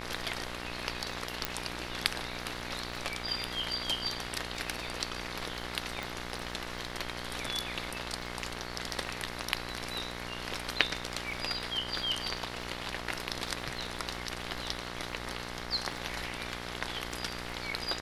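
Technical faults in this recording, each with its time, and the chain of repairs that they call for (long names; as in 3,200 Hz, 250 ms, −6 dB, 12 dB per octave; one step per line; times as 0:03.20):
mains buzz 60 Hz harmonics 37 −42 dBFS
surface crackle 40 per second −43 dBFS
0:01.45: click −11 dBFS
0:06.03: click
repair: click removal
hum removal 60 Hz, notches 37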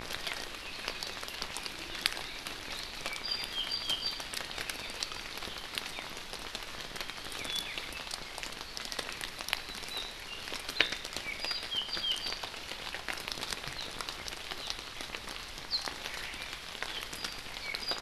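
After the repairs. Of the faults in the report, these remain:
none of them is left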